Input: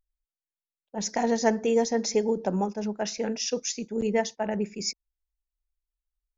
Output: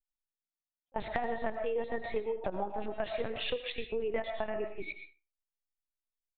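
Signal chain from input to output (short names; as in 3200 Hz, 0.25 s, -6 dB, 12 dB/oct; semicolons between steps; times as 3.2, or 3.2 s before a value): bell 140 Hz -12.5 dB 2.4 oct; gate -40 dBFS, range -18 dB; LPC vocoder at 8 kHz pitch kept; on a send at -8 dB: resonant low shelf 530 Hz -6.5 dB, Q 1.5 + reverb RT60 0.30 s, pre-delay 75 ms; on the sum: compressor 6:1, threshold -39 dBFS, peak gain reduction 18.5 dB; speakerphone echo 80 ms, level -17 dB; gain +8 dB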